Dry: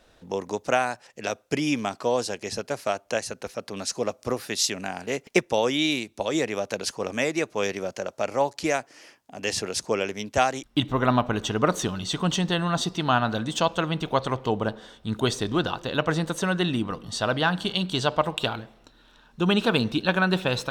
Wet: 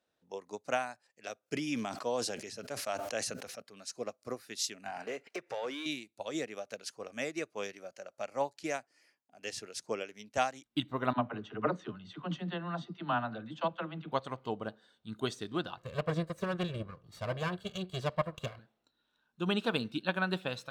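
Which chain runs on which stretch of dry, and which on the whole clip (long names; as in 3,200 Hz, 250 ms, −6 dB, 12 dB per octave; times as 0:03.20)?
0:01.40–0:03.62: high-pass filter 59 Hz + level that may fall only so fast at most 24 dB per second
0:04.86–0:05.86: downward compressor, threshold −31 dBFS + mid-hump overdrive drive 24 dB, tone 1,700 Hz, clips at −13.5 dBFS
0:11.13–0:14.12: low-pass filter 2,600 Hz + all-pass dispersion lows, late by 55 ms, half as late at 330 Hz
0:15.77–0:18.59: lower of the sound and its delayed copy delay 1.8 ms + spectral tilt −2 dB per octave
whole clip: high-pass filter 120 Hz 12 dB per octave; noise reduction from a noise print of the clip's start 7 dB; expander for the loud parts 1.5 to 1, over −34 dBFS; level −8 dB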